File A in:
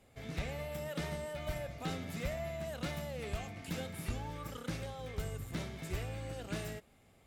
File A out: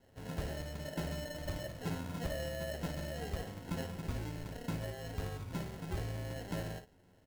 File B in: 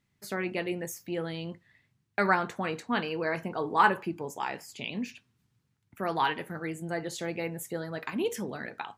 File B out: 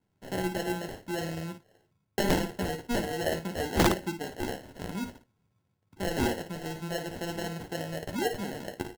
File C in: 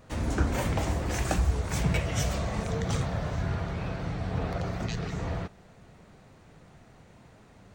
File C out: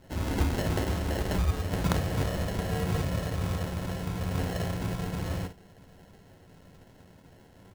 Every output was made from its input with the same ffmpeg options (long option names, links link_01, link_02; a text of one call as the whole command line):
ffmpeg -i in.wav -af "acrusher=samples=37:mix=1:aa=0.000001,aecho=1:1:11|55:0.376|0.335,aeval=exprs='(mod(4.73*val(0)+1,2)-1)/4.73':channel_layout=same,volume=-1dB" out.wav